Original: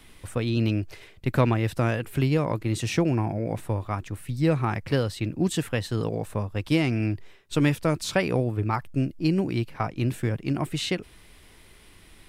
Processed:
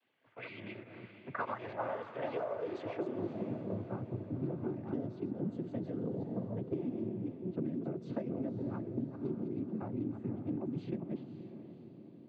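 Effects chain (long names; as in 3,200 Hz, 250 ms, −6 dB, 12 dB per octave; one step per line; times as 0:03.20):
delay that plays each chunk backwards 208 ms, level −6 dB
parametric band 590 Hz +6 dB 0.29 octaves
in parallel at −8 dB: soft clipping −25 dBFS, distortion −8 dB
on the sum: band-pass filter sweep 3,300 Hz → 250 Hz, 0:00.02–0:03.46
cochlear-implant simulation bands 16
0:02.06–0:03.19: tilt shelving filter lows −8 dB, about 840 Hz
low-pass that shuts in the quiet parts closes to 570 Hz, open at −26 dBFS
downward compressor 10 to 1, threshold −35 dBFS, peak gain reduction 16 dB
feedback delay with all-pass diffusion 545 ms, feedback 49%, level −10 dB
level +1 dB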